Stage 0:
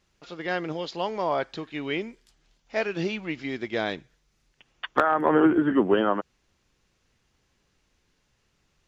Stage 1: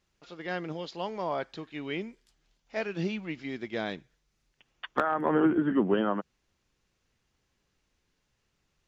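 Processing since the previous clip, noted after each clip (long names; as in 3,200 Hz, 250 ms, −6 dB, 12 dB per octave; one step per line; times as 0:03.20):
dynamic equaliser 190 Hz, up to +7 dB, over −40 dBFS, Q 1.8
level −6 dB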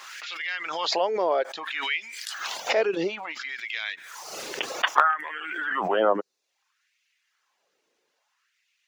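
auto-filter high-pass sine 0.6 Hz 420–2,300 Hz
reverb reduction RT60 0.51 s
background raised ahead of every attack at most 31 dB per second
level +4.5 dB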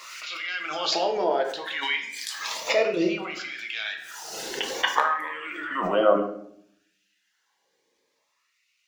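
rectangular room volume 140 cubic metres, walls mixed, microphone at 0.63 metres
phaser whose notches keep moving one way rising 0.35 Hz
level +1.5 dB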